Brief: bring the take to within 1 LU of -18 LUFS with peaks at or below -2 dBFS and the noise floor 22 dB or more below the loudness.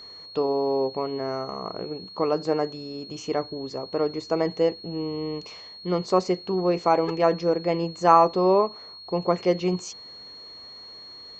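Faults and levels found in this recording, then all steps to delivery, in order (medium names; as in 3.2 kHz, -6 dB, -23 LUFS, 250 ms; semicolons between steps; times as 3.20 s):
steady tone 4.3 kHz; tone level -41 dBFS; loudness -25.0 LUFS; peak level -4.0 dBFS; loudness target -18.0 LUFS
-> band-stop 4.3 kHz, Q 30; trim +7 dB; peak limiter -2 dBFS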